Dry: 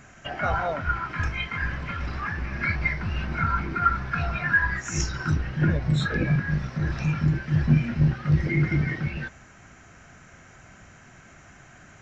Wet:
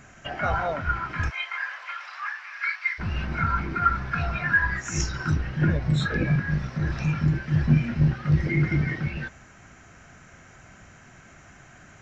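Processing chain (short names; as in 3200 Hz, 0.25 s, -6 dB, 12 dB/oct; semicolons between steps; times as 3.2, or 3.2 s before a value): 1.29–2.98 HPF 630 Hz -> 1300 Hz 24 dB/oct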